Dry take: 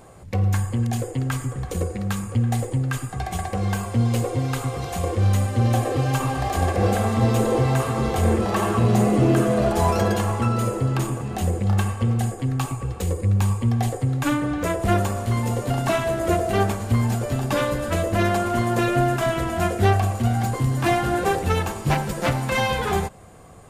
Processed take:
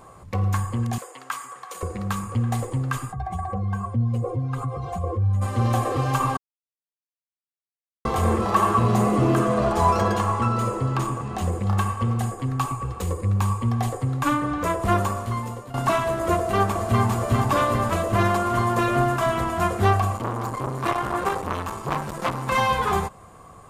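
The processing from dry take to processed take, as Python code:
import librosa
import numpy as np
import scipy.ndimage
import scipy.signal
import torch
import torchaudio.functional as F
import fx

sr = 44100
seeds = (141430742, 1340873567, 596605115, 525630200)

y = fx.highpass(x, sr, hz=830.0, slope=12, at=(0.98, 1.83))
y = fx.spec_expand(y, sr, power=1.6, at=(3.11, 5.41), fade=0.02)
y = fx.peak_eq(y, sr, hz=12000.0, db=-7.5, octaves=0.52, at=(9.39, 11.52))
y = fx.echo_throw(y, sr, start_s=16.35, length_s=0.74, ms=400, feedback_pct=75, wet_db=-3.5)
y = fx.transformer_sat(y, sr, knee_hz=920.0, at=(20.17, 22.48))
y = fx.edit(y, sr, fx.silence(start_s=6.37, length_s=1.68),
    fx.fade_out_to(start_s=15.09, length_s=0.65, floor_db=-16.0), tone=tone)
y = fx.peak_eq(y, sr, hz=1100.0, db=11.5, octaves=0.46)
y = F.gain(torch.from_numpy(y), -2.5).numpy()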